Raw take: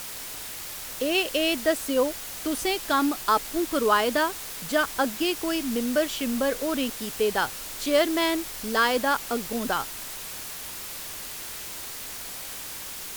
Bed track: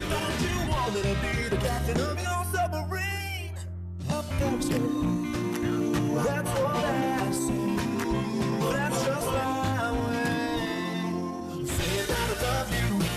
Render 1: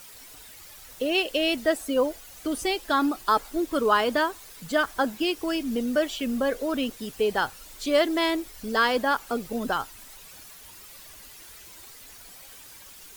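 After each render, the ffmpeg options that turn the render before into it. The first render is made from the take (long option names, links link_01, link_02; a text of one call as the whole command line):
ffmpeg -i in.wav -af "afftdn=noise_reduction=12:noise_floor=-37" out.wav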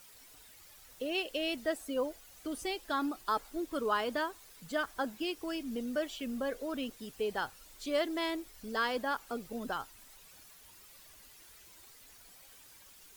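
ffmpeg -i in.wav -af "volume=-10dB" out.wav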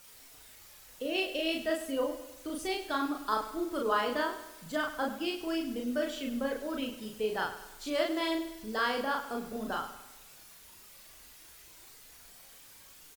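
ffmpeg -i in.wav -filter_complex "[0:a]asplit=2[link_01][link_02];[link_02]adelay=37,volume=-2dB[link_03];[link_01][link_03]amix=inputs=2:normalize=0,aecho=1:1:101|202|303|404|505:0.237|0.119|0.0593|0.0296|0.0148" out.wav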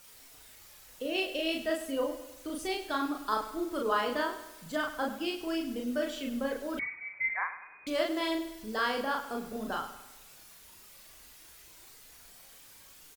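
ffmpeg -i in.wav -filter_complex "[0:a]asettb=1/sr,asplit=3[link_01][link_02][link_03];[link_01]atrim=end=6.794[link_04];[link_02]atrim=start=6.79:end=7.87,asetpts=PTS-STARTPTS,afade=type=in:duration=0.004:curve=qsin,afade=type=out:start_time=1.076:duration=0.004:curve=qsin,lowpass=frequency=2100:width_type=q:width=0.5098,lowpass=frequency=2100:width_type=q:width=0.6013,lowpass=frequency=2100:width_type=q:width=0.9,lowpass=frequency=2100:width_type=q:width=2.563,afreqshift=-2500[link_05];[link_03]atrim=start=7.866[link_06];[link_04][link_05]acrossfade=duration=0.004:curve1=hsin:curve2=qsin[link_07];[link_07][link_06]acrossfade=duration=0.004:curve1=qsin:curve2=hsin" out.wav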